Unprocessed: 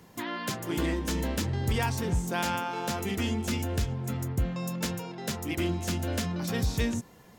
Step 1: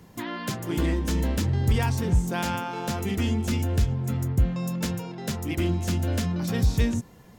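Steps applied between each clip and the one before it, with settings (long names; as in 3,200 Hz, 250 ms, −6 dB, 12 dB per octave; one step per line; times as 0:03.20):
low-shelf EQ 220 Hz +8 dB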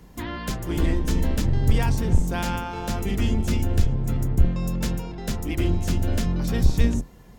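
sub-octave generator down 2 octaves, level +2 dB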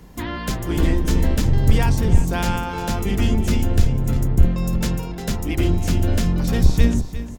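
single-tap delay 353 ms −13 dB
level +4 dB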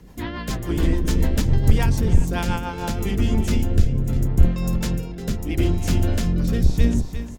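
rotating-speaker cabinet horn 7 Hz, later 0.75 Hz, at 0:02.59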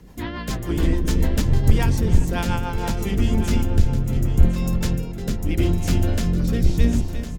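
single-tap delay 1,057 ms −11.5 dB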